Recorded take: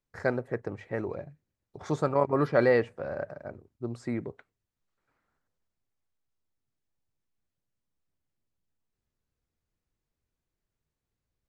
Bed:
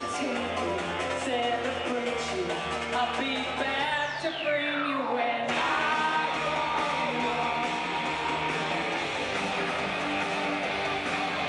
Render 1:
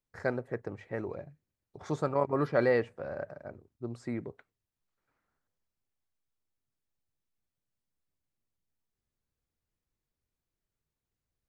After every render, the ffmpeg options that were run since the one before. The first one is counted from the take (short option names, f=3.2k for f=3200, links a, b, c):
-af "volume=-3.5dB"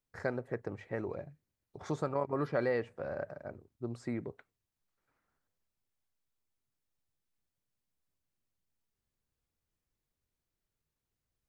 -af "acompressor=threshold=-32dB:ratio=2"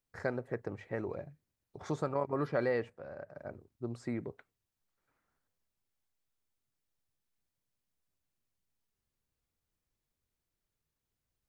-filter_complex "[0:a]asplit=3[a][b][c];[a]atrim=end=2.902[d];[b]atrim=start=2.898:end=3.352,asetpts=PTS-STARTPTS,volume=-7.5dB[e];[c]atrim=start=3.348[f];[d][e]acrossfade=d=0.004:c1=hsin:c2=hsin[g];[g][f]acrossfade=d=0.004:c1=hsin:c2=hsin"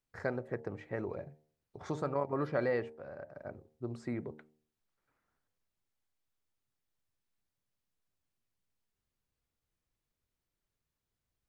-af "highshelf=f=6k:g=-5.5,bandreject=f=76.55:t=h:w=4,bandreject=f=153.1:t=h:w=4,bandreject=f=229.65:t=h:w=4,bandreject=f=306.2:t=h:w=4,bandreject=f=382.75:t=h:w=4,bandreject=f=459.3:t=h:w=4,bandreject=f=535.85:t=h:w=4,bandreject=f=612.4:t=h:w=4,bandreject=f=688.95:t=h:w=4,bandreject=f=765.5:t=h:w=4,bandreject=f=842.05:t=h:w=4,bandreject=f=918.6:t=h:w=4"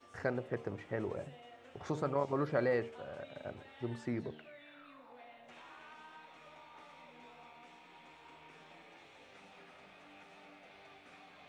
-filter_complex "[1:a]volume=-28dB[a];[0:a][a]amix=inputs=2:normalize=0"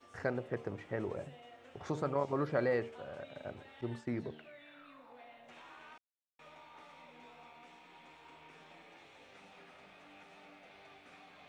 -filter_complex "[0:a]asettb=1/sr,asplit=3[a][b][c];[a]atrim=end=3.814[d];[b]atrim=start=3.81:end=4.26,asetpts=PTS-STARTPTS,afade=t=in:d=0.004:c=qsin,afade=t=out:st=0.446:d=0.004:c=qsin,agate=range=-33dB:threshold=-47dB:ratio=3:release=100:detection=peak[e];[c]atrim=start=4.256[f];[d][e]acrossfade=d=0.004:c1=hsin:c2=qsin[g];[g][f]acrossfade=d=0.004:c1=qsin:c2=hsin,asplit=3[h][i][j];[h]atrim=end=5.98,asetpts=PTS-STARTPTS,afade=t=out:st=5.976:d=0.004:c=hsin[k];[i]atrim=start=5.98:end=6.39,asetpts=PTS-STARTPTS,volume=0[l];[j]atrim=start=6.39,asetpts=PTS-STARTPTS,afade=t=in:d=0.004:c=hsin[m];[k][l][m]concat=n=3:v=0:a=1"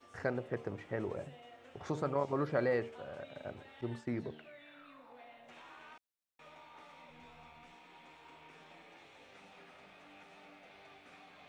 -filter_complex "[0:a]asplit=3[a][b][c];[a]afade=t=out:st=7.09:d=0.02[d];[b]asubboost=boost=4.5:cutoff=150,afade=t=in:st=7.09:d=0.02,afade=t=out:st=7.72:d=0.02[e];[c]afade=t=in:st=7.72:d=0.02[f];[d][e][f]amix=inputs=3:normalize=0"